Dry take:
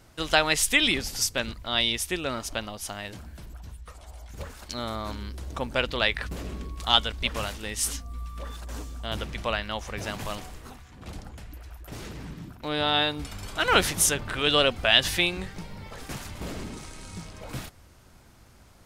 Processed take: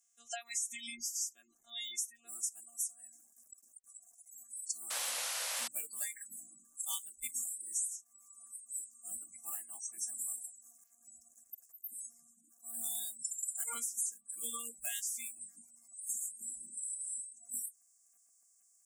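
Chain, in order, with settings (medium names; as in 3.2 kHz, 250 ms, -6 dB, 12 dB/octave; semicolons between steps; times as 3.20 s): robot voice 234 Hz; bit crusher 8-bit; comb of notches 480 Hz; short-mantissa float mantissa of 2-bit; resonant high shelf 5.4 kHz +8.5 dB, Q 3, from 2.29 s +14 dB; spectral noise reduction 18 dB; saturation -4 dBFS, distortion -7 dB; compression 16:1, threshold -29 dBFS, peak gain reduction 21 dB; spectral gate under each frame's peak -20 dB strong; tone controls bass -14 dB, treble +6 dB; 4.90–5.68 s: painted sound noise 480–12000 Hz -29 dBFS; trim -9 dB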